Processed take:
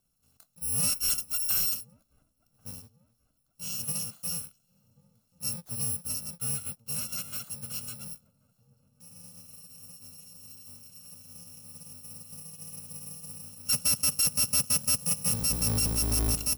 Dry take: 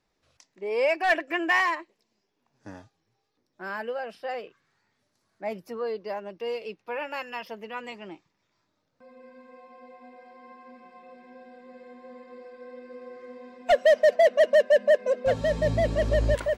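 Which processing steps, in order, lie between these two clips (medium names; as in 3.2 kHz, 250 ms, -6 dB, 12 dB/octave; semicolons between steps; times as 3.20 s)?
bit-reversed sample order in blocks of 128 samples; ten-band graphic EQ 125 Hz +5 dB, 250 Hz +5 dB, 2 kHz -8 dB; saturation -22.5 dBFS, distortion -9 dB; feedback echo behind a low-pass 1086 ms, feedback 49%, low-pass 760 Hz, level -21 dB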